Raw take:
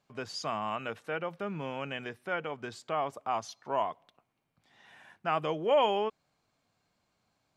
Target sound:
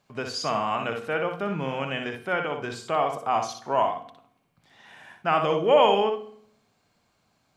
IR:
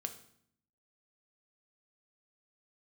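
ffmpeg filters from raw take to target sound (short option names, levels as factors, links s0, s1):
-filter_complex "[0:a]asplit=2[s0][s1];[1:a]atrim=start_sample=2205,adelay=60[s2];[s1][s2]afir=irnorm=-1:irlink=0,volume=0.668[s3];[s0][s3]amix=inputs=2:normalize=0,volume=2.11"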